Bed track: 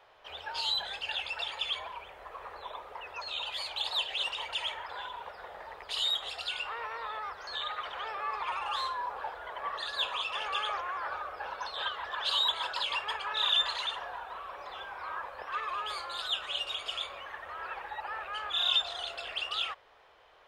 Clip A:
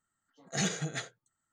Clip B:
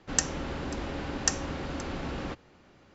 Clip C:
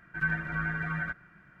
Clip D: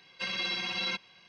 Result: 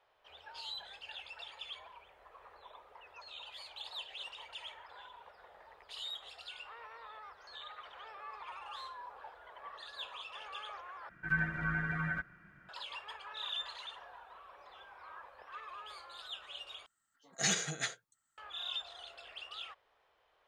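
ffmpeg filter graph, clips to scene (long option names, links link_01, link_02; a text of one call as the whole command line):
ffmpeg -i bed.wav -i cue0.wav -i cue1.wav -i cue2.wav -filter_complex "[0:a]volume=-12.5dB[link_01];[1:a]tiltshelf=frequency=670:gain=-5.5[link_02];[link_01]asplit=3[link_03][link_04][link_05];[link_03]atrim=end=11.094[link_06];[3:a]atrim=end=1.6,asetpts=PTS-STARTPTS,volume=-3dB[link_07];[link_04]atrim=start=12.686:end=16.864[link_08];[link_02]atrim=end=1.52,asetpts=PTS-STARTPTS,volume=-3dB[link_09];[link_05]atrim=start=18.376[link_10];[link_06][link_07]acrossfade=duration=0.004:curve1=hsin:curve2=hsin[link_11];[link_11][link_08]acrossfade=duration=0.004:curve1=hsin:curve2=hsin[link_12];[link_12][link_09]acrossfade=duration=0.004:curve1=hsin:curve2=hsin[link_13];[link_13][link_10]acrossfade=duration=0.004:curve1=hsin:curve2=hsin" out.wav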